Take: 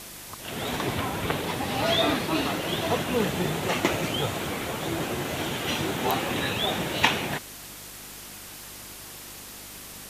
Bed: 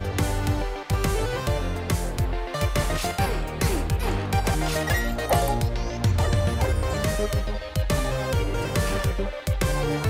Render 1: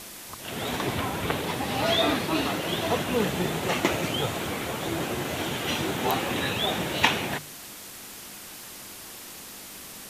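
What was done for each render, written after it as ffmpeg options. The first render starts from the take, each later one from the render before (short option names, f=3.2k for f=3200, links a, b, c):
-af "bandreject=f=50:t=h:w=4,bandreject=f=100:t=h:w=4,bandreject=f=150:t=h:w=4"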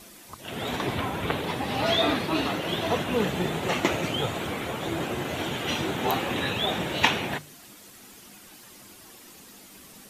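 -af "afftdn=nr=9:nf=-42"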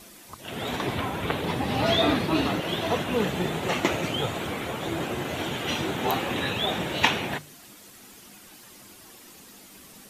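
-filter_complex "[0:a]asettb=1/sr,asplit=3[a][b][c];[a]atrim=end=1.424[d];[b]atrim=start=1.42:end=2.6,asetpts=PTS-STARTPTS,afade=t=in:d=0.004:c=qsin,afade=t=out:st=1.176:d=0.004:c=qsin,lowshelf=f=330:g=5.5[e];[c]atrim=start=2.596[f];[d][e]acrossfade=d=0.004:c1=hsin:c2=qsin[g];[g][f]acrossfade=d=0.004:c1=qsin:c2=hsin"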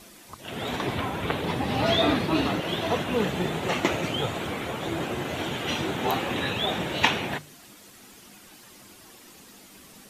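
-af "highshelf=f=10k:g=-4.5"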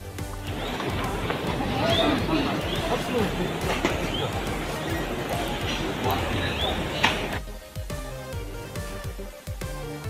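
-filter_complex "[1:a]volume=-9.5dB[a];[0:a][a]amix=inputs=2:normalize=0"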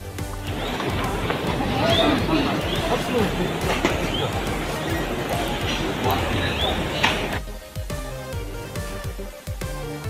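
-af "volume=3.5dB,alimiter=limit=-3dB:level=0:latency=1"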